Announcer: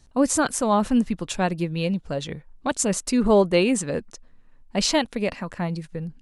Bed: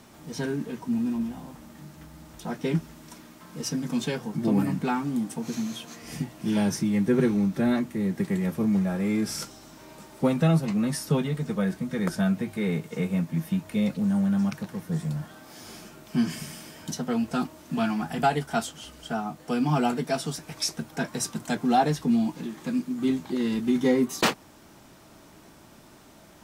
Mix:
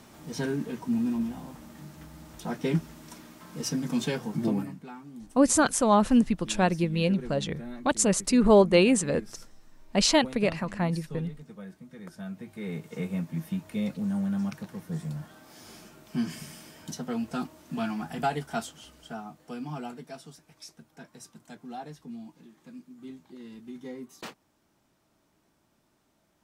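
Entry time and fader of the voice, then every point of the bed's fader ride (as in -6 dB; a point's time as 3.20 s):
5.20 s, -0.5 dB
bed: 4.44 s -0.5 dB
4.80 s -17 dB
12.09 s -17 dB
12.92 s -5 dB
18.58 s -5 dB
20.55 s -18.5 dB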